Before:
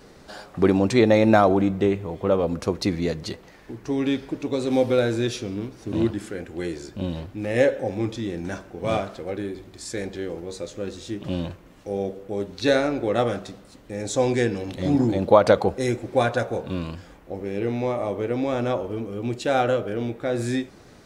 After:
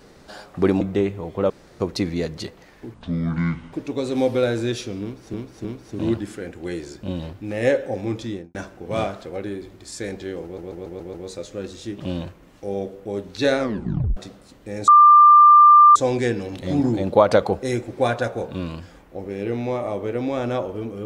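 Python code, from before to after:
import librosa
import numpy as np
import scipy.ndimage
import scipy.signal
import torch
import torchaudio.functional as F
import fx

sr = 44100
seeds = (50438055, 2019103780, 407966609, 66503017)

y = fx.studio_fade_out(x, sr, start_s=8.22, length_s=0.26)
y = fx.edit(y, sr, fx.cut(start_s=0.81, length_s=0.86),
    fx.room_tone_fill(start_s=2.36, length_s=0.3),
    fx.speed_span(start_s=3.8, length_s=0.48, speed=0.61),
    fx.repeat(start_s=5.58, length_s=0.31, count=3),
    fx.stutter(start_s=10.37, slice_s=0.14, count=6),
    fx.tape_stop(start_s=12.82, length_s=0.58),
    fx.insert_tone(at_s=14.11, length_s=1.08, hz=1190.0, db=-6.5), tone=tone)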